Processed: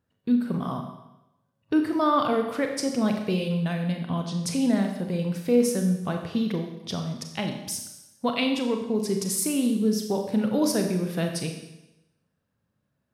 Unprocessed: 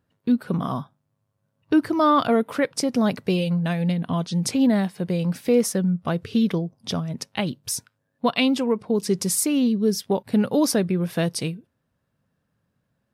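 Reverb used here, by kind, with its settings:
four-comb reverb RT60 0.92 s, combs from 29 ms, DRR 3.5 dB
level −5 dB

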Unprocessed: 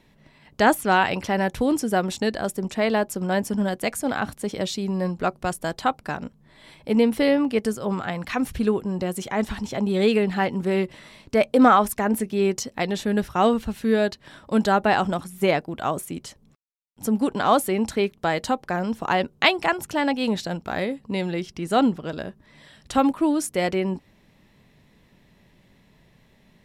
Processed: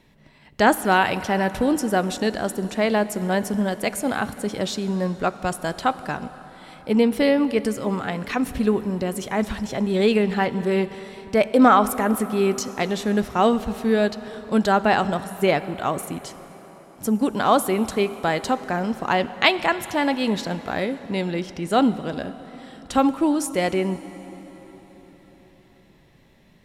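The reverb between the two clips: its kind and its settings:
dense smooth reverb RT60 4.9 s, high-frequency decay 0.75×, DRR 13.5 dB
level +1 dB

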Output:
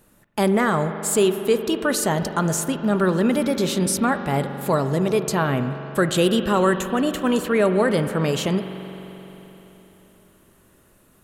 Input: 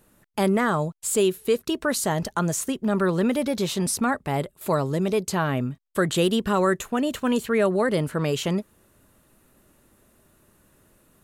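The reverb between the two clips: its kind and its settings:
spring reverb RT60 3.9 s, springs 43 ms, chirp 75 ms, DRR 8.5 dB
level +2.5 dB

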